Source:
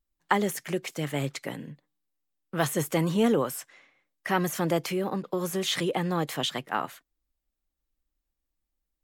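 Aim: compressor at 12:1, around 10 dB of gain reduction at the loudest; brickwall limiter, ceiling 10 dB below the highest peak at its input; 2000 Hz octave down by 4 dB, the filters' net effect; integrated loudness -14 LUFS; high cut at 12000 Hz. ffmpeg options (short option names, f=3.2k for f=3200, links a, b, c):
-af "lowpass=12k,equalizer=f=2k:t=o:g=-5,acompressor=threshold=-29dB:ratio=12,volume=22.5dB,alimiter=limit=-2dB:level=0:latency=1"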